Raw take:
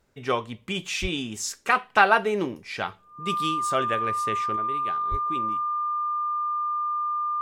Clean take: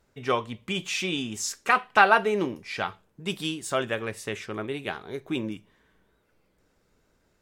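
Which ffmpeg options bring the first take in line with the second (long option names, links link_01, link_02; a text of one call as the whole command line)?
ffmpeg -i in.wav -filter_complex "[0:a]bandreject=frequency=1200:width=30,asplit=3[link_01][link_02][link_03];[link_01]afade=type=out:start_time=1.01:duration=0.02[link_04];[link_02]highpass=frequency=140:width=0.5412,highpass=frequency=140:width=1.3066,afade=type=in:start_time=1.01:duration=0.02,afade=type=out:start_time=1.13:duration=0.02[link_05];[link_03]afade=type=in:start_time=1.13:duration=0.02[link_06];[link_04][link_05][link_06]amix=inputs=3:normalize=0,asplit=3[link_07][link_08][link_09];[link_07]afade=type=out:start_time=5.1:duration=0.02[link_10];[link_08]highpass=frequency=140:width=0.5412,highpass=frequency=140:width=1.3066,afade=type=in:start_time=5.1:duration=0.02,afade=type=out:start_time=5.22:duration=0.02[link_11];[link_09]afade=type=in:start_time=5.22:duration=0.02[link_12];[link_10][link_11][link_12]amix=inputs=3:normalize=0,asetnsamples=nb_out_samples=441:pad=0,asendcmd='4.56 volume volume 7dB',volume=0dB" out.wav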